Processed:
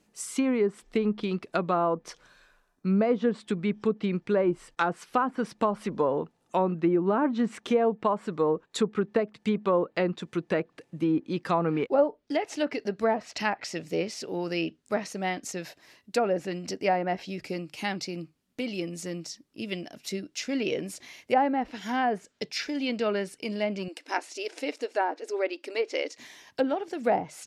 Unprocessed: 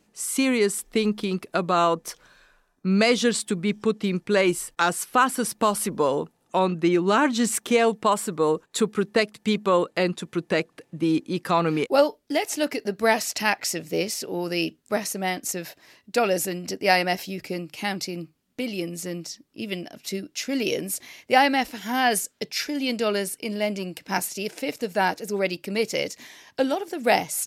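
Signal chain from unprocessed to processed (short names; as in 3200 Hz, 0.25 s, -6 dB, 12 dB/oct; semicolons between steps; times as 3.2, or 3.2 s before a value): treble ducked by the level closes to 940 Hz, closed at -16.5 dBFS; 23.88–26.18 brick-wall FIR band-pass 250–12000 Hz; gain -3 dB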